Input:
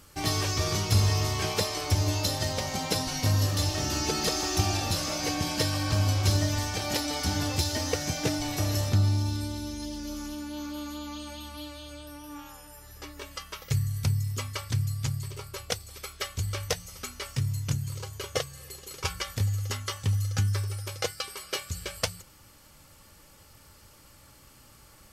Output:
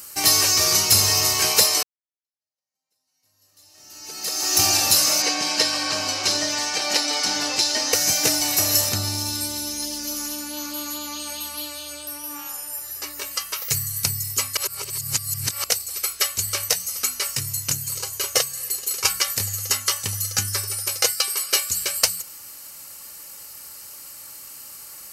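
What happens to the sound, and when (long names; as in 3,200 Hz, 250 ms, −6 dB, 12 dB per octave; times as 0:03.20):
0:01.83–0:04.62: fade in exponential
0:05.22–0:07.93: band-pass filter 210–5,200 Hz
0:14.57–0:15.64: reverse
whole clip: RIAA equalisation recording; notch filter 3,400 Hz, Q 7.6; boost into a limiter +7 dB; level −1 dB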